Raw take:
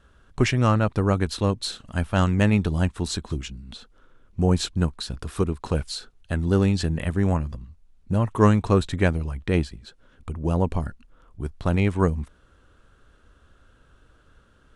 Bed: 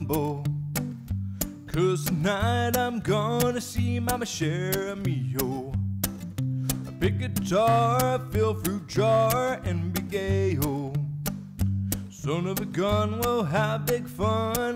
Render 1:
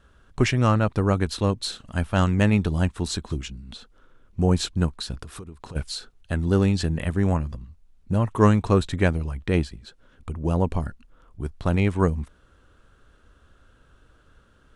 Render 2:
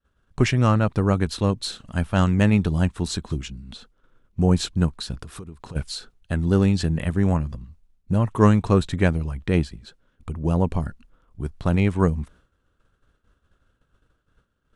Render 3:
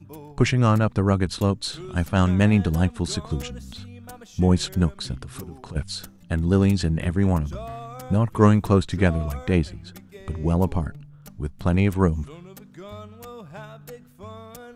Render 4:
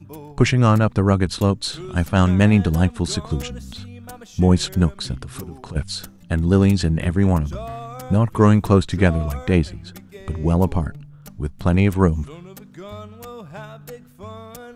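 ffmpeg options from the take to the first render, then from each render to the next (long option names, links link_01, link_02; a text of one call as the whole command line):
ffmpeg -i in.wav -filter_complex "[0:a]asplit=3[link_01][link_02][link_03];[link_01]afade=type=out:start_time=5.22:duration=0.02[link_04];[link_02]acompressor=threshold=-35dB:ratio=8:attack=3.2:release=140:knee=1:detection=peak,afade=type=in:start_time=5.22:duration=0.02,afade=type=out:start_time=5.75:duration=0.02[link_05];[link_03]afade=type=in:start_time=5.75:duration=0.02[link_06];[link_04][link_05][link_06]amix=inputs=3:normalize=0" out.wav
ffmpeg -i in.wav -af "agate=range=-33dB:threshold=-46dB:ratio=3:detection=peak,equalizer=frequency=160:width=1.5:gain=3.5" out.wav
ffmpeg -i in.wav -i bed.wav -filter_complex "[1:a]volume=-15dB[link_01];[0:a][link_01]amix=inputs=2:normalize=0" out.wav
ffmpeg -i in.wav -af "volume=3.5dB,alimiter=limit=-1dB:level=0:latency=1" out.wav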